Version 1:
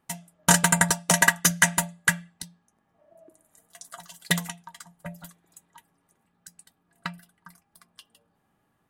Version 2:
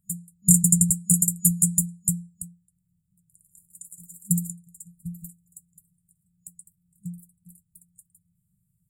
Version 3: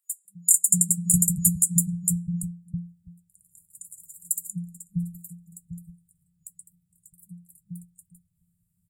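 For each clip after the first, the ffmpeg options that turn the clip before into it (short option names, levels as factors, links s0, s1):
-af "afftfilt=real='re*(1-between(b*sr/4096,200,6900))':imag='im*(1-between(b*sr/4096,200,6900))':win_size=4096:overlap=0.75,volume=1.78"
-filter_complex "[0:a]acrossover=split=200|1100[s0][s1][s2];[s1]adelay=250[s3];[s0]adelay=650[s4];[s4][s3][s2]amix=inputs=3:normalize=0"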